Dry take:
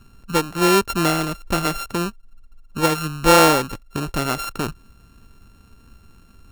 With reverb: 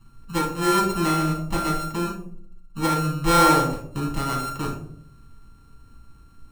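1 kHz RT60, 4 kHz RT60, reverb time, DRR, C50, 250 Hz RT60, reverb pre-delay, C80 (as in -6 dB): 0.50 s, 0.30 s, 0.60 s, -4.0 dB, 6.0 dB, 0.85 s, 6 ms, 10.5 dB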